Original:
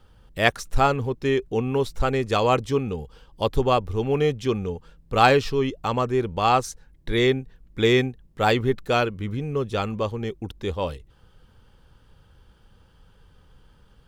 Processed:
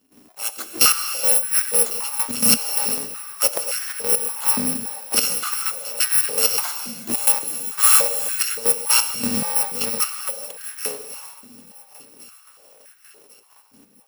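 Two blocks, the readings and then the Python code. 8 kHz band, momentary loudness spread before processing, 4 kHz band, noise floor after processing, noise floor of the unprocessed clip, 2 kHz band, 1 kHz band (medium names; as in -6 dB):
+24.5 dB, 11 LU, +6.5 dB, -53 dBFS, -56 dBFS, -1.5 dB, -7.0 dB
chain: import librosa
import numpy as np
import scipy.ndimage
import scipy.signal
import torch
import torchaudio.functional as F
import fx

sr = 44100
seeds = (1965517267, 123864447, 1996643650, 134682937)

p1 = fx.bit_reversed(x, sr, seeds[0], block=128)
p2 = fx.step_gate(p1, sr, bpm=130, pattern='.xx..x.x..xxxx', floor_db=-12.0, edge_ms=4.5)
p3 = p2 + fx.echo_feedback(p2, sr, ms=1099, feedback_pct=54, wet_db=-20.5, dry=0)
p4 = fx.rev_gated(p3, sr, seeds[1], gate_ms=470, shape='flat', drr_db=7.5)
p5 = fx.filter_held_highpass(p4, sr, hz=3.5, low_hz=250.0, high_hz=1600.0)
y = p5 * librosa.db_to_amplitude(4.5)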